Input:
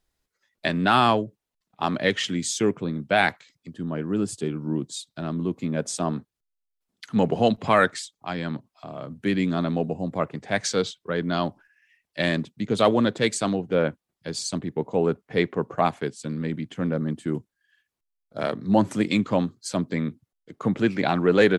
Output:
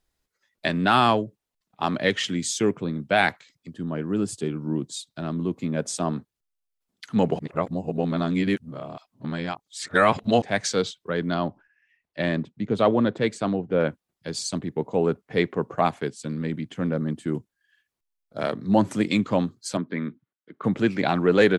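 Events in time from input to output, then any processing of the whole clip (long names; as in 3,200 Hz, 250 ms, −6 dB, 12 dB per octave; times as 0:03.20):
0:07.39–0:10.42: reverse
0:11.34–0:13.80: low-pass filter 1,700 Hz 6 dB per octave
0:19.77–0:20.64: loudspeaker in its box 200–3,300 Hz, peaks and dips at 500 Hz −5 dB, 730 Hz −8 dB, 1,500 Hz +4 dB, 2,700 Hz −5 dB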